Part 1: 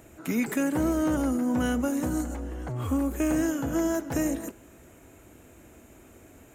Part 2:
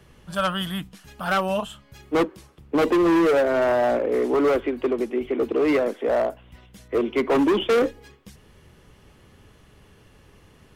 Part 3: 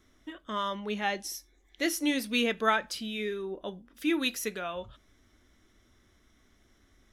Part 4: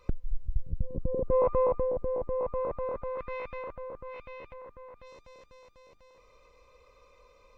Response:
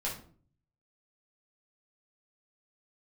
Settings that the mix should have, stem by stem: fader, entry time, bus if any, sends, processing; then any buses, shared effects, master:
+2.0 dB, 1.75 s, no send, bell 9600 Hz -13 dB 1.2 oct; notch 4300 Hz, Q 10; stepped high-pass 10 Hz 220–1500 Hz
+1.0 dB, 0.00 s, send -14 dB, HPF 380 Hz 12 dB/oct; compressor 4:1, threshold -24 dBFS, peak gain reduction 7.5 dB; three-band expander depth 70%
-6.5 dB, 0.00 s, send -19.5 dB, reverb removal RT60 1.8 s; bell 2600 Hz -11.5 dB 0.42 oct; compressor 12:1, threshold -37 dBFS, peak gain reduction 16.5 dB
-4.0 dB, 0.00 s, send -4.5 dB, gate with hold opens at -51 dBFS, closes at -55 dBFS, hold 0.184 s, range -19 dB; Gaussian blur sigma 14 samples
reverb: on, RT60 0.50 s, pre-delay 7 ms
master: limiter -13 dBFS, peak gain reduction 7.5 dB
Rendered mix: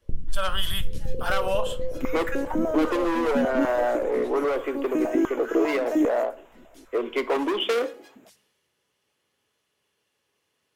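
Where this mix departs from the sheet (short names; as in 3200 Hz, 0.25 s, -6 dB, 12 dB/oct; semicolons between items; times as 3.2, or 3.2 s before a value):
stem 1 +2.0 dB -> -4.0 dB; stem 3 -6.5 dB -> -14.5 dB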